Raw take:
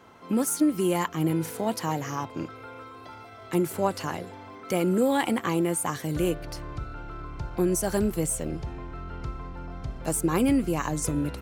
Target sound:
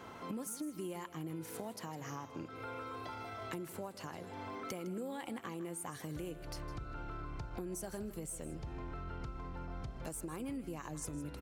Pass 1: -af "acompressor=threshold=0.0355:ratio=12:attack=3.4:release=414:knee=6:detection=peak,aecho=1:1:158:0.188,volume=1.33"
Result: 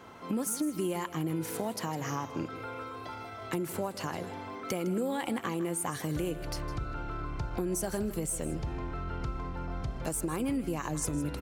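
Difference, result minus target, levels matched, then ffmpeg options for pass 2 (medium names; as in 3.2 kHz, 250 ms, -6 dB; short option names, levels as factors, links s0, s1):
compression: peak gain reduction -10 dB
-af "acompressor=threshold=0.01:ratio=12:attack=3.4:release=414:knee=6:detection=peak,aecho=1:1:158:0.188,volume=1.33"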